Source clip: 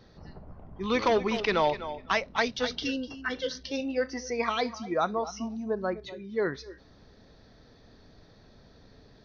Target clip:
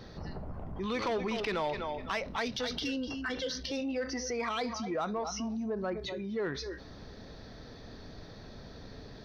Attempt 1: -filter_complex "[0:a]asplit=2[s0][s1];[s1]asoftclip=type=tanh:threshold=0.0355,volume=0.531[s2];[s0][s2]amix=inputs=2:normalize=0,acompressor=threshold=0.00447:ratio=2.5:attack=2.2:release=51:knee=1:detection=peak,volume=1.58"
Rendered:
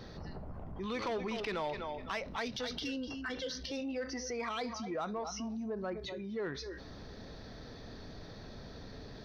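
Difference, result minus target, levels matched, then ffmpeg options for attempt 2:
compression: peak gain reduction +4 dB
-filter_complex "[0:a]asplit=2[s0][s1];[s1]asoftclip=type=tanh:threshold=0.0355,volume=0.531[s2];[s0][s2]amix=inputs=2:normalize=0,acompressor=threshold=0.00944:ratio=2.5:attack=2.2:release=51:knee=1:detection=peak,volume=1.58"

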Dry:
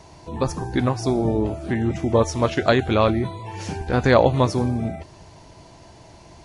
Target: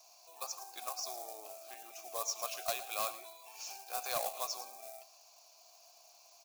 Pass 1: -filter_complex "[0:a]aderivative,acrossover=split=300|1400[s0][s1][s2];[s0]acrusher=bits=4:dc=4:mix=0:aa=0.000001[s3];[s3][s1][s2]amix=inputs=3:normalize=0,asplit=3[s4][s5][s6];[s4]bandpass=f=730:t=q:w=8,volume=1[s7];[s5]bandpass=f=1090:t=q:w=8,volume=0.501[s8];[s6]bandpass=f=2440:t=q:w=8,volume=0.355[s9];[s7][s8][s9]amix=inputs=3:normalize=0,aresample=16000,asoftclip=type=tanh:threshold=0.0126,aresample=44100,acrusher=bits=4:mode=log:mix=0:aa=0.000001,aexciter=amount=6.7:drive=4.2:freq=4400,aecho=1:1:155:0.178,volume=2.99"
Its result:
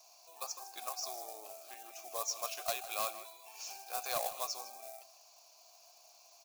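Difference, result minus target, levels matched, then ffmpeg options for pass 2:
echo 46 ms late
-filter_complex "[0:a]aderivative,acrossover=split=300|1400[s0][s1][s2];[s0]acrusher=bits=4:dc=4:mix=0:aa=0.000001[s3];[s3][s1][s2]amix=inputs=3:normalize=0,asplit=3[s4][s5][s6];[s4]bandpass=f=730:t=q:w=8,volume=1[s7];[s5]bandpass=f=1090:t=q:w=8,volume=0.501[s8];[s6]bandpass=f=2440:t=q:w=8,volume=0.355[s9];[s7][s8][s9]amix=inputs=3:normalize=0,aresample=16000,asoftclip=type=tanh:threshold=0.0126,aresample=44100,acrusher=bits=4:mode=log:mix=0:aa=0.000001,aexciter=amount=6.7:drive=4.2:freq=4400,aecho=1:1:109:0.178,volume=2.99"

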